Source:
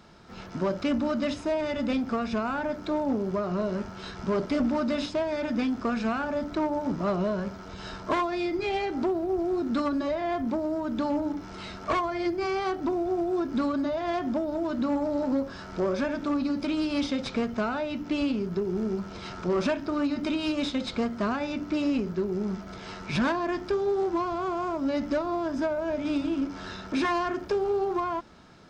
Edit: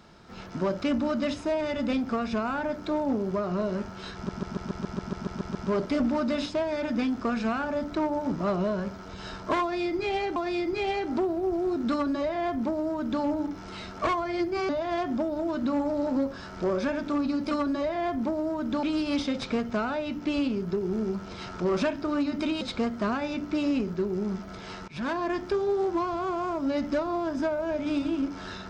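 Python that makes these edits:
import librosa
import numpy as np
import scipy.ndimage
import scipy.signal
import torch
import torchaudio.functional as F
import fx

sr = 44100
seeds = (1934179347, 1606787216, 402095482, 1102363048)

y = fx.edit(x, sr, fx.stutter(start_s=4.15, slice_s=0.14, count=11),
    fx.repeat(start_s=8.22, length_s=0.74, count=2),
    fx.duplicate(start_s=9.77, length_s=1.32, to_s=16.67),
    fx.cut(start_s=12.55, length_s=1.3),
    fx.cut(start_s=20.45, length_s=0.35),
    fx.fade_in_from(start_s=23.07, length_s=0.35, floor_db=-23.0), tone=tone)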